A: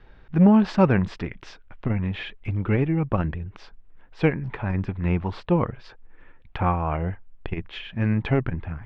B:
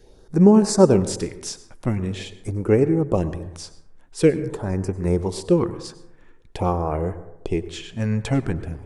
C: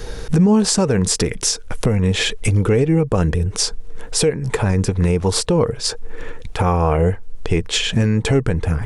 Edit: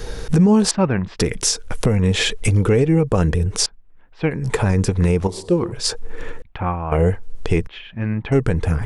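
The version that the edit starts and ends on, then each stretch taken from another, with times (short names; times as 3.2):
C
0.71–1.19 from A
3.66–4.31 from A
5.27–5.72 from B
6.42–6.92 from A
7.67–8.32 from A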